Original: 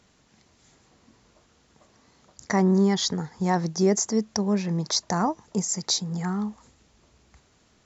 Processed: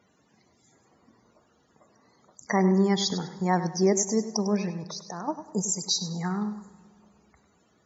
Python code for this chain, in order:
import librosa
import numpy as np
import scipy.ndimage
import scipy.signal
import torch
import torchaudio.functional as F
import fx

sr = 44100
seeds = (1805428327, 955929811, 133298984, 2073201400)

y = fx.highpass(x, sr, hz=180.0, slope=6)
y = fx.level_steps(y, sr, step_db=18, at=(4.69, 5.27), fade=0.02)
y = fx.spec_topn(y, sr, count=64)
y = fx.echo_feedback(y, sr, ms=100, feedback_pct=30, wet_db=-12.0)
y = fx.rev_plate(y, sr, seeds[0], rt60_s=2.4, hf_ratio=0.55, predelay_ms=0, drr_db=18.0)